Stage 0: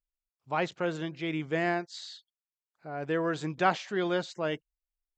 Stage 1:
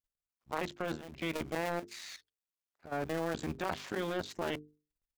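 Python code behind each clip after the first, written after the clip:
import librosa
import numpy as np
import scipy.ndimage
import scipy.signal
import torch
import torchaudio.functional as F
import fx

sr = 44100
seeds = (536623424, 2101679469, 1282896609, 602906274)

y = fx.cycle_switch(x, sr, every=2, mode='muted')
y = fx.level_steps(y, sr, step_db=13)
y = fx.hum_notches(y, sr, base_hz=50, count=9)
y = y * 10.0 ** (5.0 / 20.0)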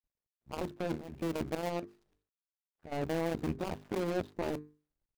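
y = scipy.ndimage.median_filter(x, 41, mode='constant')
y = y * 10.0 ** (4.0 / 20.0)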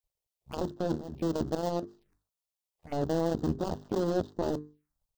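y = fx.env_phaser(x, sr, low_hz=250.0, high_hz=2300.0, full_db=-38.5)
y = y * 10.0 ** (5.0 / 20.0)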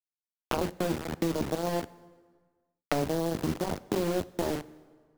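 y = fx.quant_dither(x, sr, seeds[0], bits=6, dither='none')
y = fx.rev_plate(y, sr, seeds[1], rt60_s=0.86, hf_ratio=0.8, predelay_ms=0, drr_db=18.5)
y = fx.band_squash(y, sr, depth_pct=100)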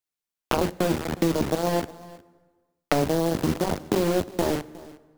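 y = x + 10.0 ** (-20.5 / 20.0) * np.pad(x, (int(361 * sr / 1000.0), 0))[:len(x)]
y = y * 10.0 ** (6.0 / 20.0)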